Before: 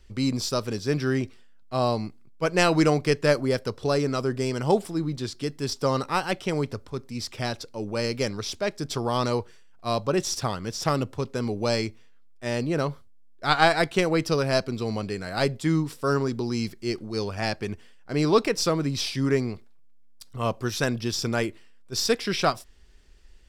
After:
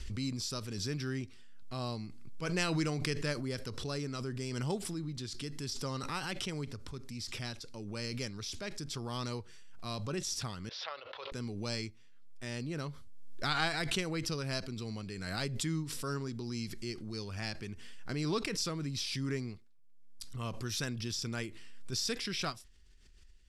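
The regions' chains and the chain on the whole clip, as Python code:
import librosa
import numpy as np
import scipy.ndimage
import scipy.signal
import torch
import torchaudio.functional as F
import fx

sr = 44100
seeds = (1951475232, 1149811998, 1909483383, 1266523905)

y = fx.chain(x, sr, fx.ellip_bandpass(low_hz=540.0, high_hz=3800.0, order=3, stop_db=40),
    fx.notch(hz=1200.0, q=17.0), at=(10.69, 11.32))
y = scipy.signal.sosfilt(scipy.signal.ellip(4, 1.0, 40, 12000.0, 'lowpass', fs=sr, output='sos'), y)
y = fx.peak_eq(y, sr, hz=640.0, db=-10.0, octaves=1.9)
y = fx.pre_swell(y, sr, db_per_s=30.0)
y = y * librosa.db_to_amplitude(-8.0)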